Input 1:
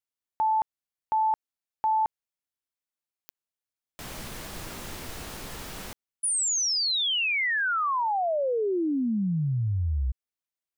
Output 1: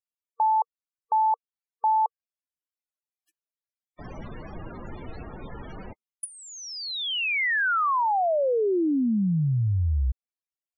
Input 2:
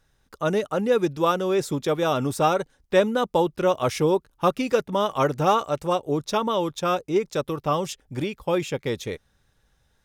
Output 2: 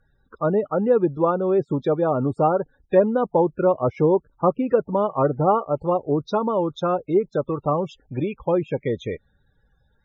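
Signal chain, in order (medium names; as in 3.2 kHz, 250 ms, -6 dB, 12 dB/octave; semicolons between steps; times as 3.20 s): loudest bins only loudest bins 32; low-pass that closes with the level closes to 1 kHz, closed at -20.5 dBFS; trim +3 dB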